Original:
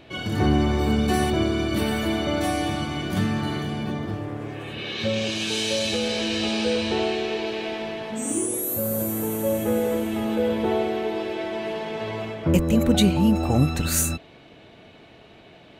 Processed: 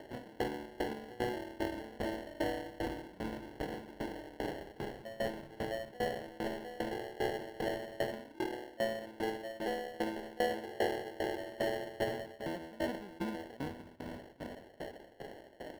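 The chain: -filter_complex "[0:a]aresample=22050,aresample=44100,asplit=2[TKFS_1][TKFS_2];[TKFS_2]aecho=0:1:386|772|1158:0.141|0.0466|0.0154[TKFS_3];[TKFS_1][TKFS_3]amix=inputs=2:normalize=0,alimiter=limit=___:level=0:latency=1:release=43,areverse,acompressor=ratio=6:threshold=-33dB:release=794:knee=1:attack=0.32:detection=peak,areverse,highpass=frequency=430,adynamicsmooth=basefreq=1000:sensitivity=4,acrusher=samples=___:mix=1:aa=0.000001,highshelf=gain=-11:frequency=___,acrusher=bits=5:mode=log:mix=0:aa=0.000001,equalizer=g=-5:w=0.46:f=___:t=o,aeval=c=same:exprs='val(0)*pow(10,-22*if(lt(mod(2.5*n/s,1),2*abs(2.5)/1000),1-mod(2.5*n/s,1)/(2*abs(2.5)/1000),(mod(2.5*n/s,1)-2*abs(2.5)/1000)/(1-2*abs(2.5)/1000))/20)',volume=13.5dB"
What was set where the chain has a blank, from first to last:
-14.5dB, 36, 4600, 6900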